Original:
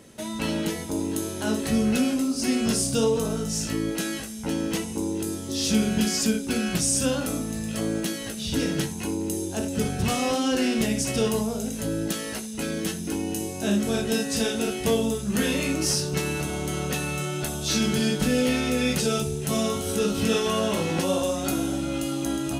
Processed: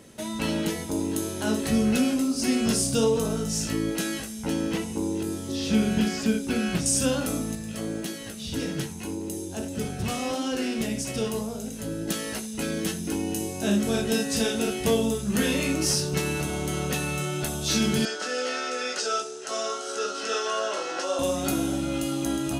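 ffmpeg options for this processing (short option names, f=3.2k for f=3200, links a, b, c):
-filter_complex "[0:a]asettb=1/sr,asplit=3[a][b][c];[a]atrim=end=4.604[d];[b]atrim=start=4.6:end=6.86,asetpts=PTS-STARTPTS,afade=t=in:d=0.004:c=qsin,afade=t=out:st=2.256:d=0.004:c=qsin,acrossover=split=3500[e][f];[f]acompressor=threshold=-39dB:ratio=4:attack=1:release=60[g];[e][g]amix=inputs=2:normalize=0[h];[c]atrim=start=6.856[i];[d][h]acrossfade=d=0.004:c1=hsin:c2=qsin[j];[j][i]acrossfade=d=0.004:c1=qsin:c2=hsin,asettb=1/sr,asplit=3[k][l][m];[k]atrim=end=7.554[n];[l]atrim=start=7.55:end=12.08,asetpts=PTS-STARTPTS,afade=t=in:d=0.004:c=qsin,afade=t=out:st=4.526:d=0.004:c=qsin,flanger=delay=4.6:depth=9.3:regen=84:speed=1.7:shape=triangular[o];[m]atrim=start=12.076[p];[n][o]acrossfade=d=0.004:c1=hsin:c2=qsin[q];[q][p]acrossfade=d=0.004:c1=qsin:c2=hsin,asettb=1/sr,asplit=3[r][s][t];[r]atrim=end=18.054[u];[s]atrim=start=18.05:end=21.19,asetpts=PTS-STARTPTS,afade=t=in:d=0.004:c=qsin,afade=t=out:st=3.136:d=0.004:c=qsin,highpass=f=420:w=0.5412,highpass=f=420:w=1.3066,equalizer=f=470:t=q:w=4:g=-4,equalizer=f=930:t=q:w=4:g=-5,equalizer=f=1.4k:t=q:w=4:g=8,equalizer=f=2.3k:t=q:w=4:g=-7,equalizer=f=3.5k:t=q:w=4:g=-5,equalizer=f=5.2k:t=q:w=4:g=3,lowpass=f=7.4k:w=0.5412,lowpass=f=7.4k:w=1.3066[v];[t]atrim=start=21.186[w];[u][v]acrossfade=d=0.004:c1=hsin:c2=qsin[x];[x][w]acrossfade=d=0.004:c1=qsin:c2=hsin"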